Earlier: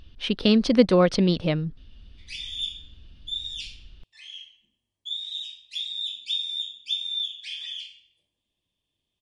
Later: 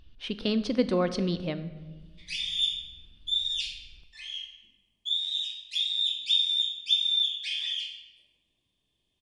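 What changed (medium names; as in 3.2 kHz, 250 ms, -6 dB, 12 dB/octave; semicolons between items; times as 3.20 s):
speech -9.0 dB; reverb: on, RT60 1.2 s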